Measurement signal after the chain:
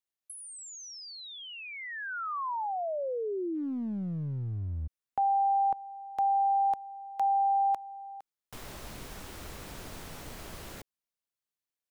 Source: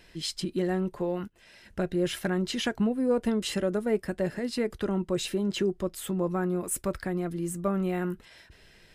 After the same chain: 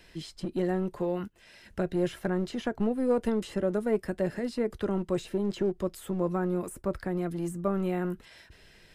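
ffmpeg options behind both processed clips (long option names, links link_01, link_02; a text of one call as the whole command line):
ffmpeg -i in.wav -filter_complex "[0:a]acrossover=split=370|1400[link_01][link_02][link_03];[link_01]aeval=exprs='clip(val(0),-1,0.0211)':channel_layout=same[link_04];[link_03]acompressor=threshold=-46dB:ratio=5[link_05];[link_04][link_02][link_05]amix=inputs=3:normalize=0" out.wav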